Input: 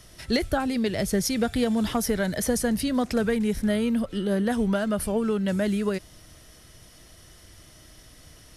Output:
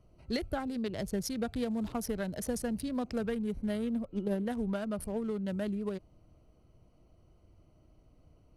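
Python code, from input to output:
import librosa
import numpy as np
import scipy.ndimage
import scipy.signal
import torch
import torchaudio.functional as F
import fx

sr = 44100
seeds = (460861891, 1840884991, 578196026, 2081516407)

y = fx.wiener(x, sr, points=25)
y = fx.transient(y, sr, attack_db=9, sustain_db=-3, at=(3.78, 4.4))
y = y * librosa.db_to_amplitude(-9.0)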